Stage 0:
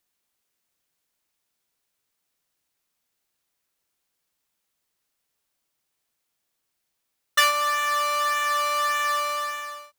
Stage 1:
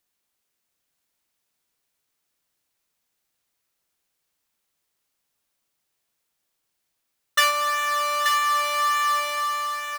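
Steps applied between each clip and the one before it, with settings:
noise that follows the level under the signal 30 dB
on a send: single-tap delay 881 ms −6 dB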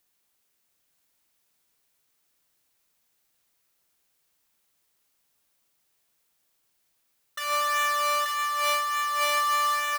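high-shelf EQ 11,000 Hz +4 dB
compressor whose output falls as the input rises −26 dBFS, ratio −1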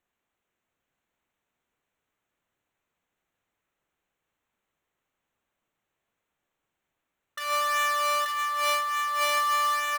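adaptive Wiener filter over 9 samples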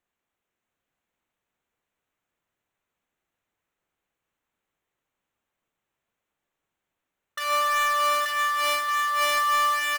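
leveller curve on the samples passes 1
on a send: single-tap delay 626 ms −8 dB

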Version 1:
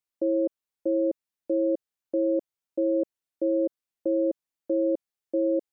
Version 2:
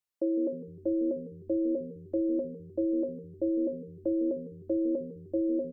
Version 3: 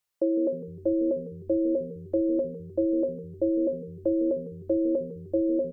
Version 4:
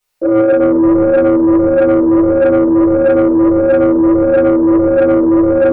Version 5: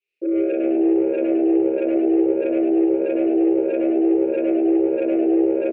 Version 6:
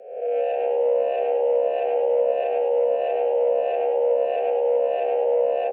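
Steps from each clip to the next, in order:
mains-hum notches 60/120/180/240/300/360/420/480/540 Hz; echo with shifted repeats 153 ms, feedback 49%, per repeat −79 Hz, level −14 dB; level −1.5 dB
parametric band 270 Hz −8 dB 0.58 octaves; level +7 dB
convolution reverb RT60 2.7 s, pre-delay 4 ms, DRR −14.5 dB; soft clipping −9 dBFS, distortion −15 dB; level +4 dB
pair of resonant band-passes 980 Hz, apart 2.7 octaves; echo with shifted repeats 104 ms, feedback 56%, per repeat +67 Hz, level −7 dB
peak hold with a rise ahead of every peak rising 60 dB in 0.80 s; frequency shifter +150 Hz; level −4 dB

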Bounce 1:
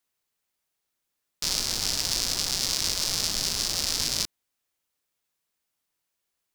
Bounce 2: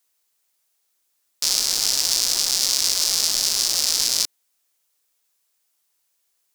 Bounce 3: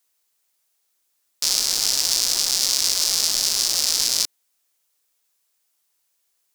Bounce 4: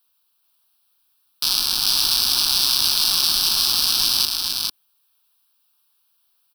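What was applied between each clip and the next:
bass and treble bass −12 dB, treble +7 dB; in parallel at −1 dB: brickwall limiter −13 dBFS, peak gain reduction 10.5 dB; on the sum: level −1 dB
no processing that can be heard
phaser with its sweep stopped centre 2,000 Hz, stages 6; single-tap delay 444 ms −3.5 dB; level +5.5 dB

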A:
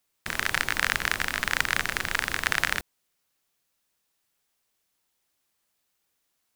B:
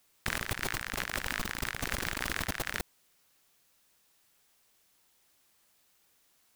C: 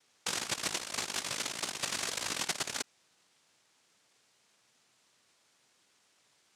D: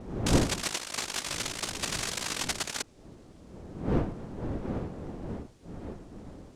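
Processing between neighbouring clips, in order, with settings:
compressor whose output falls as the input rises −37 dBFS, ratio −1
cochlear-implant simulation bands 1
wind on the microphone 320 Hz −37 dBFS; level +2 dB

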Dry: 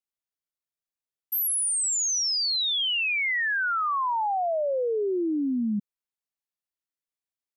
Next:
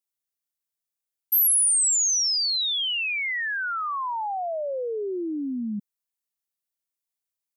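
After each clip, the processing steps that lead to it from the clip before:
high-shelf EQ 5,400 Hz +11 dB
level −3 dB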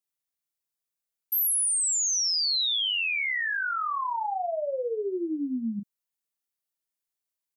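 double-tracking delay 35 ms −6.5 dB
in parallel at −2 dB: compressor whose output falls as the input rises −24 dBFS, ratio −0.5
on the sum: level −7.5 dB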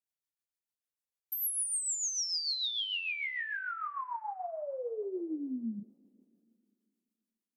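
on a send at −23 dB: convolution reverb RT60 2.4 s, pre-delay 84 ms
on the sum: rotating-speaker cabinet horn 6.7 Hz
level −5.5 dB

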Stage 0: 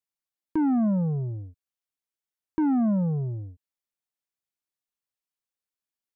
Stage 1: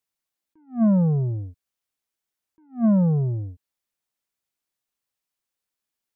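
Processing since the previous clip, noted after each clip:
level that may rise only so fast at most 250 dB per second
level +6 dB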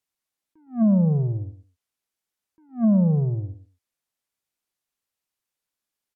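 treble cut that deepens with the level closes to 730 Hz, closed at −16.5 dBFS
repeating echo 111 ms, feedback 17%, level −12 dB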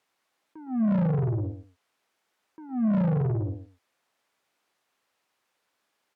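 mid-hump overdrive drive 32 dB, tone 1,100 Hz, clips at −13 dBFS
level −5 dB

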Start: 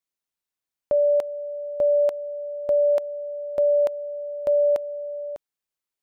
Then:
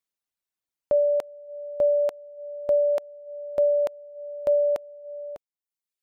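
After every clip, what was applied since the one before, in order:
reverb reduction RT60 0.93 s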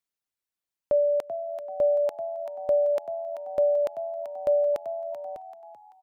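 echo with shifted repeats 386 ms, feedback 35%, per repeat +86 Hz, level −11 dB
level −1.5 dB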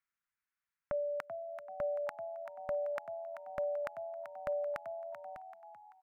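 drawn EQ curve 160 Hz 0 dB, 270 Hz −6 dB, 430 Hz −18 dB, 1,400 Hz +10 dB, 2,200 Hz +6 dB, 3,300 Hz −7 dB
level −2.5 dB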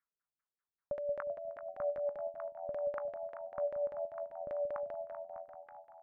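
echo with a time of its own for lows and highs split 660 Hz, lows 180 ms, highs 309 ms, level −6 dB
auto-filter low-pass saw down 5.1 Hz 310–1,800 Hz
level −5.5 dB

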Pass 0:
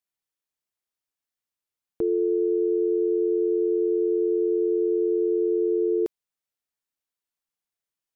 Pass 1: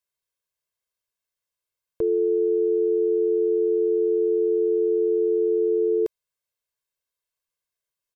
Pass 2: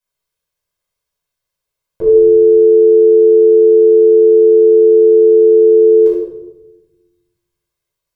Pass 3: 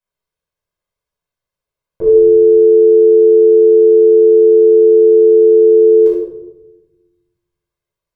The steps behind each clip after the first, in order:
comb filter 1.9 ms, depth 71%
convolution reverb RT60 1.0 s, pre-delay 9 ms, DRR −8.5 dB; level −2 dB
one half of a high-frequency compander decoder only

